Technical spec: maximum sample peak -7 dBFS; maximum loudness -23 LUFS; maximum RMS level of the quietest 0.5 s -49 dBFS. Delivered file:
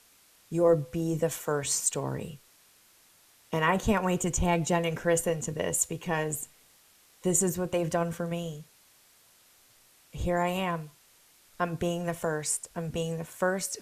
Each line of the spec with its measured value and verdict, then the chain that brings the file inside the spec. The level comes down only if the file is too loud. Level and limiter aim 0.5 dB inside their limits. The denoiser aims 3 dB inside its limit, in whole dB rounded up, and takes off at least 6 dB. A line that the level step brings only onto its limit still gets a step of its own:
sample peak -10.5 dBFS: pass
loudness -29.0 LUFS: pass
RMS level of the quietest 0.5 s -61 dBFS: pass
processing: none needed

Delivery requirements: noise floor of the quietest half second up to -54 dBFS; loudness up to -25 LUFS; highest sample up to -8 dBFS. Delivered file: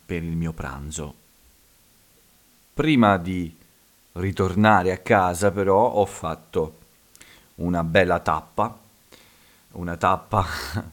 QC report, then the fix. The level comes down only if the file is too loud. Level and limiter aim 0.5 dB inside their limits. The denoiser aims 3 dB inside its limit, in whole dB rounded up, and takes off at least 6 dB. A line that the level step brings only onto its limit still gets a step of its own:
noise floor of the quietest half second -58 dBFS: pass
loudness -22.5 LUFS: fail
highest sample -2.5 dBFS: fail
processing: trim -3 dB; peak limiter -8.5 dBFS

